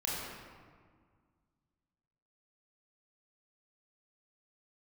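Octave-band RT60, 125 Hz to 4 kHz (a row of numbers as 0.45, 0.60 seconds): 2.5, 2.3, 1.8, 1.8, 1.4, 1.0 seconds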